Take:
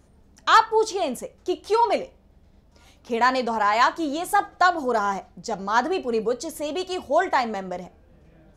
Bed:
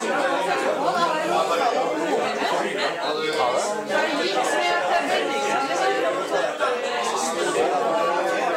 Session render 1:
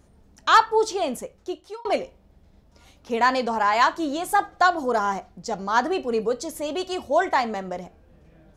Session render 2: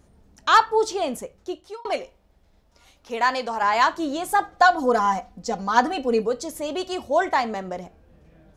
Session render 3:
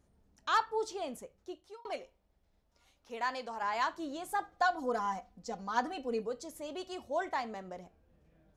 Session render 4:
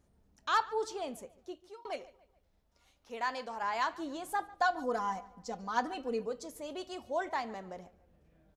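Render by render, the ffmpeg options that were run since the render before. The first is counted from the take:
-filter_complex "[0:a]asplit=2[a][b];[a]atrim=end=1.85,asetpts=PTS-STARTPTS,afade=t=out:st=1.22:d=0.63[c];[b]atrim=start=1.85,asetpts=PTS-STARTPTS,afade=t=in:d=0.004:c=hsin[d];[c][d]concat=n=2:v=0:a=1"
-filter_complex "[0:a]asettb=1/sr,asplit=3[a][b][c];[a]atrim=end=1.864[d];[b]atrim=start=1.86:end=3.62,asetpts=PTS-STARTPTS,afade=t=in:d=0.004:c=qsin,afade=t=out:st=1.756:d=0.004:c=qsin,equalizer=f=140:w=0.38:g=-9[e];[c]atrim=start=3.616[f];[d][e]acrossfade=d=0.004:c1=hsin:c2=qsin[g];[g][f]acrossfade=d=0.004:c1=qsin:c2=hsin,asettb=1/sr,asplit=3[h][i][j];[h]atrim=end=4.584[k];[i]atrim=start=4.58:end=6.22,asetpts=PTS-STARTPTS,afade=t=in:d=0.004:c=qsin,afade=t=out:st=1.636:d=0.004:c=qsin,aecho=1:1:4:0.74,atrim=end_sample=72324[l];[j]atrim=start=6.216[m];[k][l]acrossfade=d=0.004:c1=hsin:c2=qsin[n];[n][m]acrossfade=d=0.004:c1=qsin:c2=hsin"
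-af "volume=-13.5dB"
-filter_complex "[0:a]asplit=2[a][b];[b]adelay=144,lowpass=f=4.2k:p=1,volume=-20dB,asplit=2[c][d];[d]adelay=144,lowpass=f=4.2k:p=1,volume=0.42,asplit=2[e][f];[f]adelay=144,lowpass=f=4.2k:p=1,volume=0.42[g];[a][c][e][g]amix=inputs=4:normalize=0"

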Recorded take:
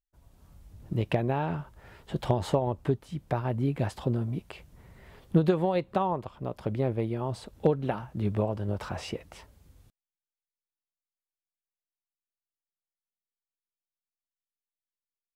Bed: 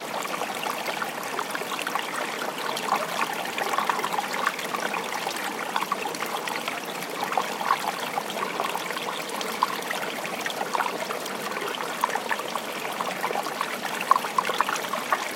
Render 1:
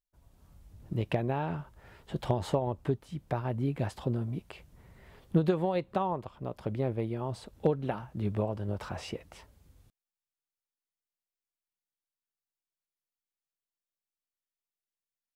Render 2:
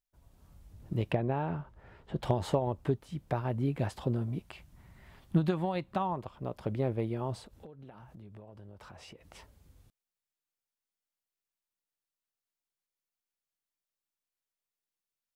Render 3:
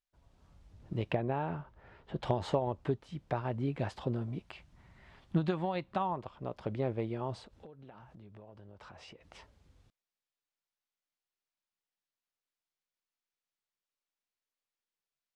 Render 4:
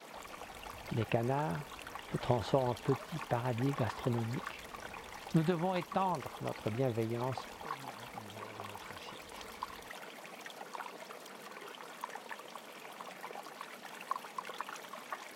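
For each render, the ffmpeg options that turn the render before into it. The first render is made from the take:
-af "volume=-3dB"
-filter_complex "[0:a]asettb=1/sr,asplit=3[a][b][c];[a]atrim=end=1.124[d];[b]atrim=start=1.12:end=2.23,asetpts=PTS-STARTPTS,afade=t=in:d=0.004:c=qsin,afade=t=out:st=1.106:d=0.004:c=qsin,lowpass=f=1.9k:p=1[e];[c]atrim=start=2.226[f];[d][e]acrossfade=d=0.004:c1=hsin:c2=qsin[g];[g][f]acrossfade=d=0.004:c1=qsin:c2=hsin,asettb=1/sr,asplit=3[h][i][j];[h]atrim=end=4.464[k];[i]atrim=start=4.46:end=6.17,asetpts=PTS-STARTPTS,afade=t=in:d=0.004:c=qsin,afade=t=out:st=1.706:d=0.004:c=qsin,equalizer=f=460:w=3:g=-11.5[l];[j]atrim=start=6.166[m];[k][l]acrossfade=d=0.004:c1=hsin:c2=qsin[n];[n][m]acrossfade=d=0.004:c1=qsin:c2=hsin,asettb=1/sr,asplit=3[o][p][q];[o]atrim=end=7.414[r];[p]atrim=start=7.41:end=9.35,asetpts=PTS-STARTPTS,afade=t=in:d=0.004:c=qsin,afade=t=out:st=1.936:d=0.004:c=qsin,acompressor=threshold=-48dB:ratio=6:attack=3.2:release=140:knee=1:detection=peak[s];[q]atrim=start=9.346[t];[r][s]acrossfade=d=0.004:c1=hsin:c2=qsin[u];[u][t]acrossfade=d=0.004:c1=qsin:c2=hsin"
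-af "lowpass=5.6k,lowshelf=f=320:g=-4.5"
-filter_complex "[1:a]volume=-18.5dB[a];[0:a][a]amix=inputs=2:normalize=0"

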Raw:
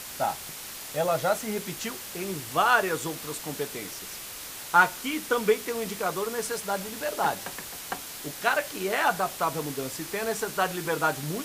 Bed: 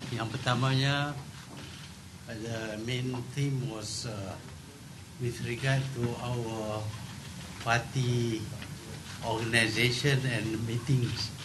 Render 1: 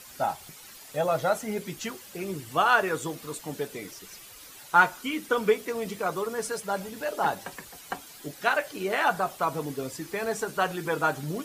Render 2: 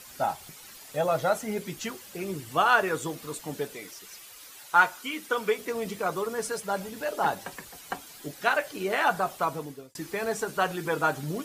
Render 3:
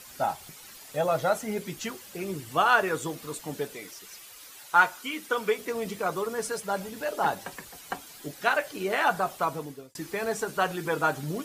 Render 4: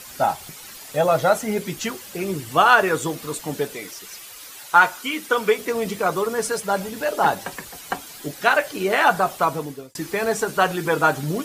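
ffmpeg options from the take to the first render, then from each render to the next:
-af "afftdn=nr=11:nf=-40"
-filter_complex "[0:a]asettb=1/sr,asplit=3[a][b][c];[a]atrim=end=3.734[d];[b]atrim=start=3.73:end=5.59,asetpts=PTS-STARTPTS,afade=t=in:d=0.004:c=qsin,afade=t=out:st=1.856:d=0.004:c=qsin,lowshelf=f=350:g=-10[e];[c]atrim=start=5.586[f];[d][e]acrossfade=d=0.004:c1=hsin:c2=qsin[g];[g][f]acrossfade=d=0.004:c1=qsin:c2=hsin,asplit=2[h][i];[h]atrim=end=9.95,asetpts=PTS-STARTPTS,afade=t=out:st=9.42:d=0.53[j];[i]atrim=start=9.95,asetpts=PTS-STARTPTS,afade=t=in:d=0.004:c=hsin[k];[j][k]concat=n=2:v=0:a=1"
-af anull
-af "volume=7.5dB,alimiter=limit=-2dB:level=0:latency=1"

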